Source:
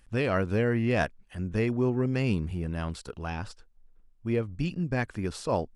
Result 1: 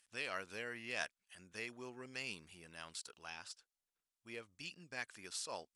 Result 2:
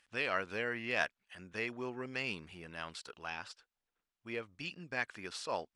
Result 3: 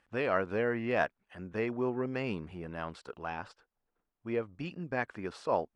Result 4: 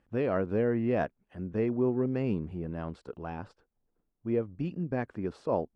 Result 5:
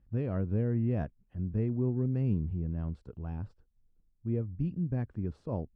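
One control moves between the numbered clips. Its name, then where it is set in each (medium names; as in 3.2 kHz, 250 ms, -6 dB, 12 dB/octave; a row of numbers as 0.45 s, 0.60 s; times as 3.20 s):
band-pass filter, frequency: 7.9 kHz, 3 kHz, 1 kHz, 410 Hz, 100 Hz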